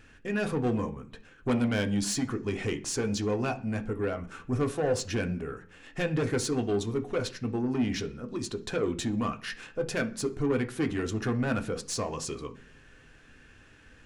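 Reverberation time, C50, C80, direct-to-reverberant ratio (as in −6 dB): 0.45 s, 16.0 dB, 21.0 dB, 5.5 dB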